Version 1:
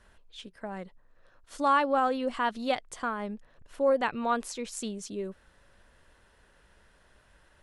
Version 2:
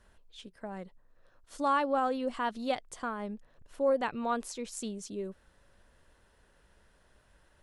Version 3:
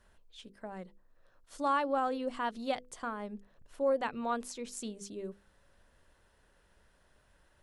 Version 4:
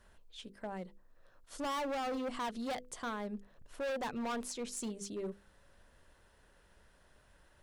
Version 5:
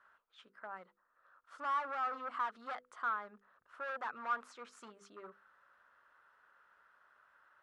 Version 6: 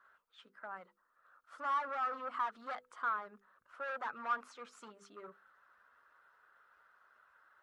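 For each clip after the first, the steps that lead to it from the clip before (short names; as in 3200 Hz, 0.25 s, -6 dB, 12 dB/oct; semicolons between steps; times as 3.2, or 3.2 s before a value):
bell 2000 Hz -3.5 dB 2.2 oct; gain -2 dB
notches 50/100/150/200/250/300/350/400/450/500 Hz; gain -2 dB
hard clip -36.5 dBFS, distortion -4 dB; gain +2 dB
band-pass 1300 Hz, Q 5; gain +10 dB
bin magnitudes rounded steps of 15 dB; gain +1 dB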